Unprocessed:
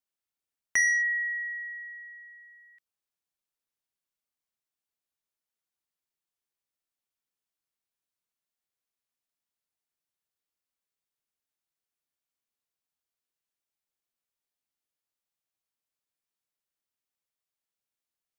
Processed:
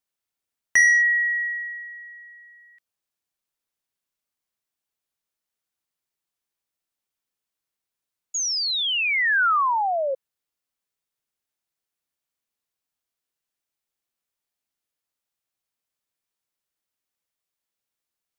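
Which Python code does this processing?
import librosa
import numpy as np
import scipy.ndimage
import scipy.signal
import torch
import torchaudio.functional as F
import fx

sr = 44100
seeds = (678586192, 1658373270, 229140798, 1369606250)

y = fx.spec_paint(x, sr, seeds[0], shape='fall', start_s=8.34, length_s=1.81, low_hz=520.0, high_hz=6900.0, level_db=-29.0)
y = fx.dynamic_eq(y, sr, hz=1400.0, q=1.1, threshold_db=-41.0, ratio=4.0, max_db=6)
y = y * librosa.db_to_amplitude(4.0)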